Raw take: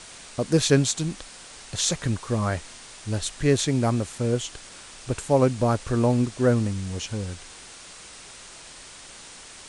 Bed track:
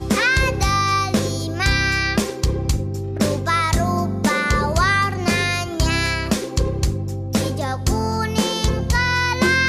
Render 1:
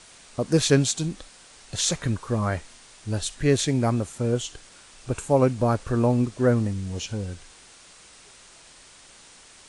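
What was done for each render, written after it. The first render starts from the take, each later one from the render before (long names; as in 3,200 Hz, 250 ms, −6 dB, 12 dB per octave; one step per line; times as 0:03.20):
noise reduction from a noise print 6 dB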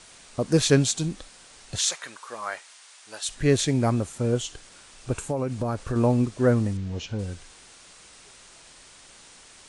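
0:01.78–0:03.29: high-pass filter 870 Hz
0:05.23–0:05.96: downward compressor 12 to 1, threshold −22 dBFS
0:06.77–0:07.19: high-frequency loss of the air 120 metres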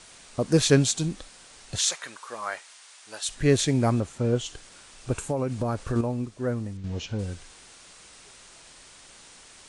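0:04.00–0:04.46: high-frequency loss of the air 59 metres
0:06.01–0:06.84: clip gain −8 dB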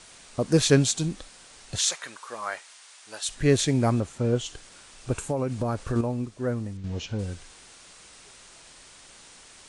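no processing that can be heard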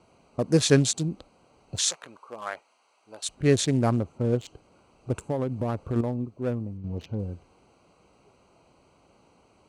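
adaptive Wiener filter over 25 samples
high-pass filter 69 Hz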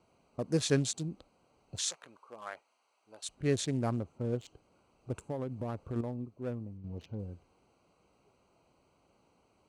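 level −9 dB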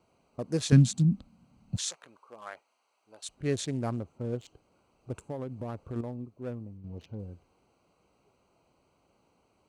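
0:00.72–0:01.77: low shelf with overshoot 290 Hz +10.5 dB, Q 3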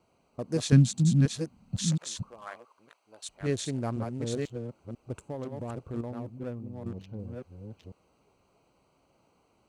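delay that plays each chunk backwards 495 ms, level −4 dB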